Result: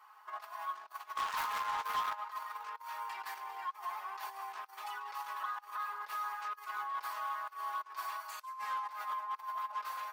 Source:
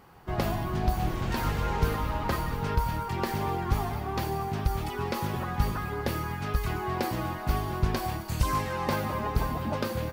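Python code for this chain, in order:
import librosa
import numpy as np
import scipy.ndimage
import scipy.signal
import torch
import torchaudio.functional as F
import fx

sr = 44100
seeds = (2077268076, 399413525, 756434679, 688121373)

y = x + 0.84 * np.pad(x, (int(4.7 * sr / 1000.0), 0))[:len(x)]
y = fx.over_compress(y, sr, threshold_db=-30.0, ratio=-0.5)
y = fx.leveller(y, sr, passes=5, at=(1.17, 2.13))
y = fx.ladder_highpass(y, sr, hz=940.0, resonance_pct=60)
y = 10.0 ** (-27.0 / 20.0) * np.tanh(y / 10.0 ** (-27.0 / 20.0))
y = F.gain(torch.from_numpy(y), -2.0).numpy()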